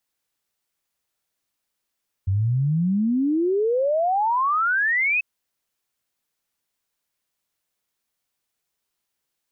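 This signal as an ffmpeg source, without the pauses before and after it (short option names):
-f lavfi -i "aevalsrc='0.126*clip(min(t,2.94-t)/0.01,0,1)*sin(2*PI*92*2.94/log(2600/92)*(exp(log(2600/92)*t/2.94)-1))':d=2.94:s=44100"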